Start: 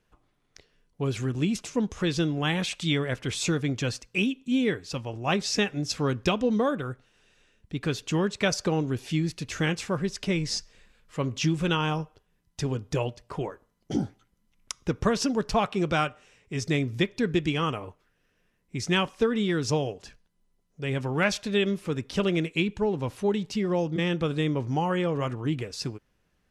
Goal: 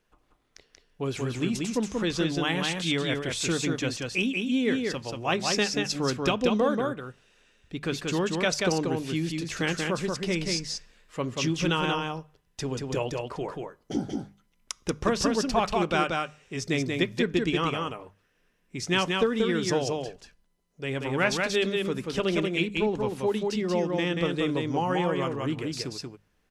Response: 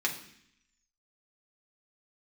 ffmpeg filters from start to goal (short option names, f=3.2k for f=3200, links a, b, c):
-filter_complex "[0:a]equalizer=f=110:w=0.95:g=-6,bandreject=f=50:t=h:w=6,bandreject=f=100:t=h:w=6,bandreject=f=150:t=h:w=6,bandreject=f=200:t=h:w=6,asplit=2[a][b];[b]aecho=0:1:184:0.668[c];[a][c]amix=inputs=2:normalize=0"